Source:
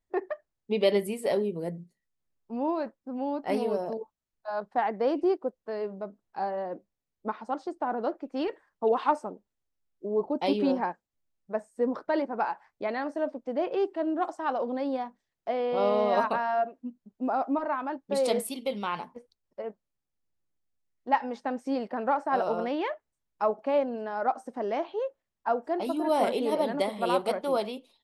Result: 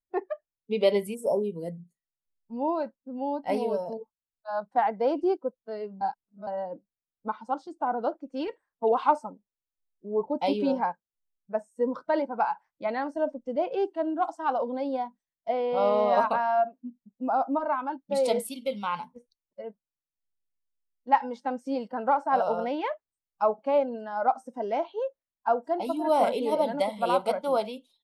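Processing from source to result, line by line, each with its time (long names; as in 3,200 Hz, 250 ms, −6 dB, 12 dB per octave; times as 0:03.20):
0:01.14–0:01.43: time-frequency box erased 1,300–5,200 Hz
0:06.01–0:06.47: reverse
0:12.86–0:13.56: low-shelf EQ 140 Hz +7 dB
whole clip: noise reduction from a noise print of the clip's start 12 dB; dynamic equaliser 800 Hz, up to +5 dB, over −36 dBFS, Q 1; level −1.5 dB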